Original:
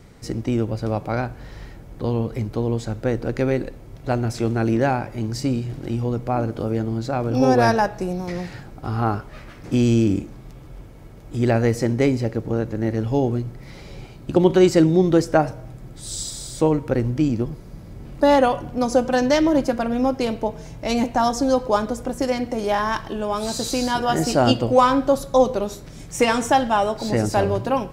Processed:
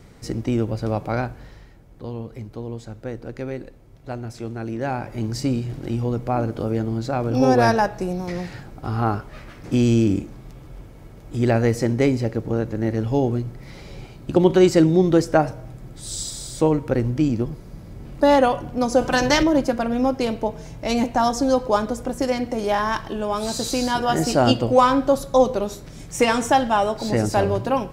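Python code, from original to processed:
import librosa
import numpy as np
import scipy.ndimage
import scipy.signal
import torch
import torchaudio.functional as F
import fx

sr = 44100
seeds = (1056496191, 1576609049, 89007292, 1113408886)

y = fx.spec_clip(x, sr, under_db=13, at=(19.0, 19.42), fade=0.02)
y = fx.edit(y, sr, fx.fade_down_up(start_s=1.24, length_s=3.93, db=-9.0, fade_s=0.4), tone=tone)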